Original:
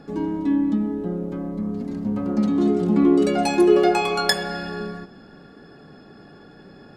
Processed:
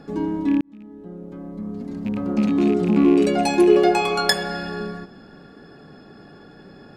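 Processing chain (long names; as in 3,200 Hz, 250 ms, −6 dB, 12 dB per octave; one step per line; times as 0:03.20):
loose part that buzzes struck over −22 dBFS, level −26 dBFS
0:00.61–0:02.47: fade in
0:03.05–0:04.00: notch filter 1,300 Hz, Q 7.1
level +1 dB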